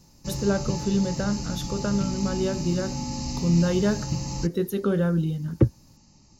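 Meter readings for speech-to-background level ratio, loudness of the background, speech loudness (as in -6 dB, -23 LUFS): 5.0 dB, -31.5 LUFS, -26.5 LUFS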